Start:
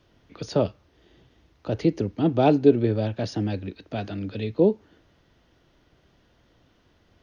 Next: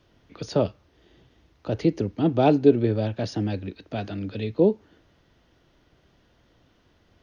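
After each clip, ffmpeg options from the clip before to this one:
ffmpeg -i in.wav -af anull out.wav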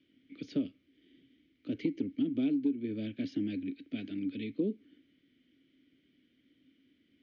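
ffmpeg -i in.wav -filter_complex "[0:a]asplit=3[link_01][link_02][link_03];[link_01]bandpass=frequency=270:width_type=q:width=8,volume=0dB[link_04];[link_02]bandpass=frequency=2290:width_type=q:width=8,volume=-6dB[link_05];[link_03]bandpass=frequency=3010:width_type=q:width=8,volume=-9dB[link_06];[link_04][link_05][link_06]amix=inputs=3:normalize=0,acompressor=threshold=-32dB:ratio=10,volume=5dB" out.wav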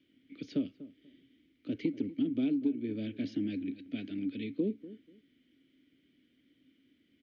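ffmpeg -i in.wav -filter_complex "[0:a]asplit=2[link_01][link_02];[link_02]adelay=243,lowpass=frequency=1400:poles=1,volume=-16dB,asplit=2[link_03][link_04];[link_04]adelay=243,lowpass=frequency=1400:poles=1,volume=0.23[link_05];[link_01][link_03][link_05]amix=inputs=3:normalize=0" out.wav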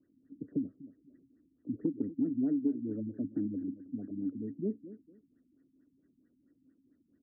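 ffmpeg -i in.wav -af "afftfilt=real='re*lt(b*sr/1024,280*pow(2000/280,0.5+0.5*sin(2*PI*4.5*pts/sr)))':imag='im*lt(b*sr/1024,280*pow(2000/280,0.5+0.5*sin(2*PI*4.5*pts/sr)))':win_size=1024:overlap=0.75" out.wav

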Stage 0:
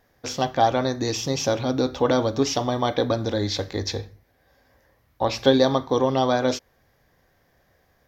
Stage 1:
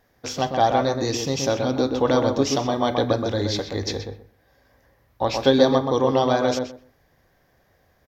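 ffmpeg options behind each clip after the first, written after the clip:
ffmpeg -i in.wav -filter_complex "[0:a]asplit=2[link_01][link_02];[link_02]adelay=126,lowpass=frequency=1700:poles=1,volume=-4dB,asplit=2[link_03][link_04];[link_04]adelay=126,lowpass=frequency=1700:poles=1,volume=0.18,asplit=2[link_05][link_06];[link_06]adelay=126,lowpass=frequency=1700:poles=1,volume=0.18[link_07];[link_01][link_03][link_05][link_07]amix=inputs=4:normalize=0" out.wav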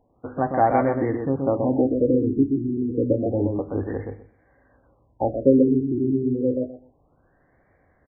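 ffmpeg -i in.wav -af "equalizer=frequency=290:width=3.6:gain=5.5,afftfilt=real='re*lt(b*sr/1024,410*pow(2400/410,0.5+0.5*sin(2*PI*0.29*pts/sr)))':imag='im*lt(b*sr/1024,410*pow(2400/410,0.5+0.5*sin(2*PI*0.29*pts/sr)))':win_size=1024:overlap=0.75" out.wav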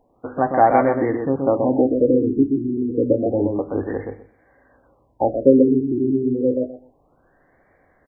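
ffmpeg -i in.wav -af "equalizer=frequency=82:width=0.52:gain=-8,volume=5dB" out.wav

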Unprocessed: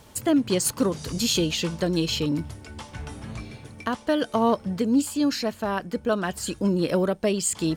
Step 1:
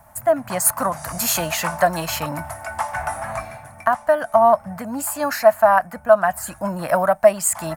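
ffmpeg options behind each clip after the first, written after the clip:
ffmpeg -i in.wav -filter_complex "[0:a]firequalizer=gain_entry='entry(150,0);entry(430,-19);entry(650,12);entry(920,6);entry(1800,3);entry(3200,-17);entry(11000,6)':delay=0.05:min_phase=1,acrossover=split=470[link_01][link_02];[link_02]dynaudnorm=framelen=260:gausssize=3:maxgain=15dB[link_03];[link_01][link_03]amix=inputs=2:normalize=0,volume=-1.5dB" out.wav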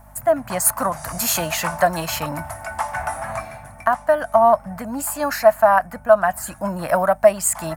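ffmpeg -i in.wav -af "aeval=exprs='val(0)+0.00501*(sin(2*PI*50*n/s)+sin(2*PI*2*50*n/s)/2+sin(2*PI*3*50*n/s)/3+sin(2*PI*4*50*n/s)/4+sin(2*PI*5*50*n/s)/5)':channel_layout=same" out.wav

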